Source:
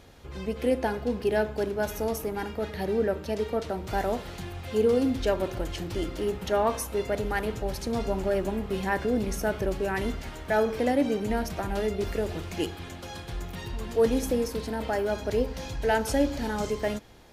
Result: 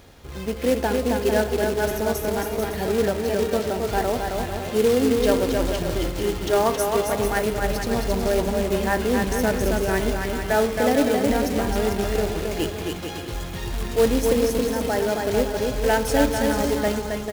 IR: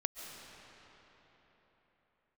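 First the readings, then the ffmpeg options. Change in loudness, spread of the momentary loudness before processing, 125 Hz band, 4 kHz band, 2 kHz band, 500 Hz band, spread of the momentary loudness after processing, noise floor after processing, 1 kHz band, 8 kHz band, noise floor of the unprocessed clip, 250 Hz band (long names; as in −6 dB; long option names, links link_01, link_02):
+6.0 dB, 9 LU, +6.0 dB, +8.0 dB, +6.5 dB, +6.0 dB, 7 LU, −32 dBFS, +6.0 dB, +9.0 dB, −41 dBFS, +5.5 dB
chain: -af "aecho=1:1:270|445.5|559.6|633.7|681.9:0.631|0.398|0.251|0.158|0.1,acrusher=bits=3:mode=log:mix=0:aa=0.000001,volume=3.5dB"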